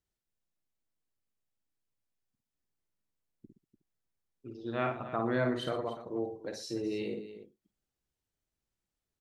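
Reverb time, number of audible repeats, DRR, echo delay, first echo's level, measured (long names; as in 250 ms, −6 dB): no reverb audible, 3, no reverb audible, 53 ms, −5.5 dB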